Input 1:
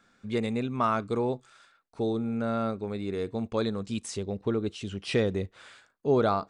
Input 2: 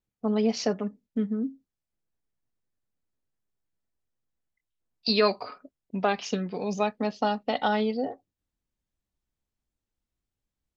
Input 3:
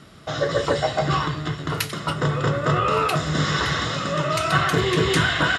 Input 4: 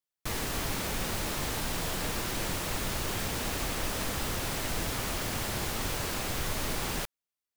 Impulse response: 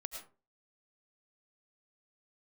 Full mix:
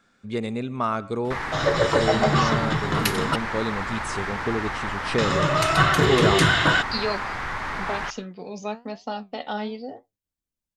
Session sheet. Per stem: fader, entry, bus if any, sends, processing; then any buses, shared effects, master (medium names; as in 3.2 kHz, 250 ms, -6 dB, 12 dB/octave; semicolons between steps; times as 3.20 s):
-0.5 dB, 0.00 s, send -10.5 dB, none
-1.0 dB, 1.85 s, no send, treble shelf 5.6 kHz +7.5 dB; flange 1.1 Hz, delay 8 ms, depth 6.8 ms, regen +72%
+1.0 dB, 1.25 s, muted 3.36–5.18 s, no send, none
-3.5 dB, 1.05 s, send -12 dB, low-pass 4.1 kHz 12 dB/octave; high-order bell 1.3 kHz +12.5 dB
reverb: on, RT60 0.35 s, pre-delay 65 ms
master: none